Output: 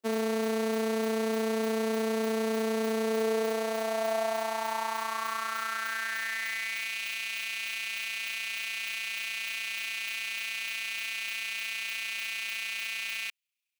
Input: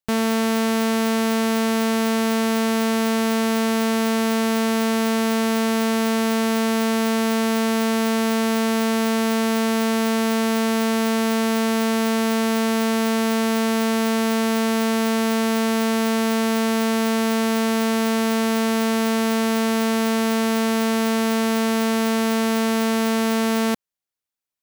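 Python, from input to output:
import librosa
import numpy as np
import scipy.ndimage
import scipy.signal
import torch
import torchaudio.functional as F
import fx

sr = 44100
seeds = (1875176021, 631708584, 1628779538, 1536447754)

y = 10.0 ** (-25.5 / 20.0) * np.tanh(x / 10.0 ** (-25.5 / 20.0))
y = fx.stretch_grains(y, sr, factor=0.56, grain_ms=67.0)
y = fx.filter_sweep_highpass(y, sr, from_hz=380.0, to_hz=2500.0, start_s=2.99, end_s=6.99, q=4.8)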